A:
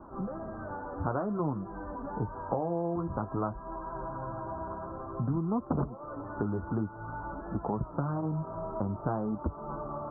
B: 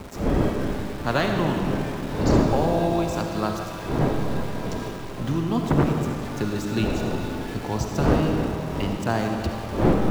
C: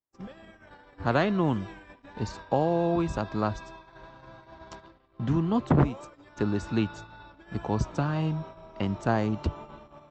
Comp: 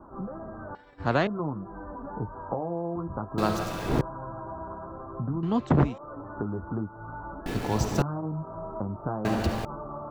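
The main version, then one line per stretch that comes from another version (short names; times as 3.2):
A
0.75–1.27 from C
3.38–4.01 from B
5.43–5.98 from C
7.46–8.02 from B
9.25–9.65 from B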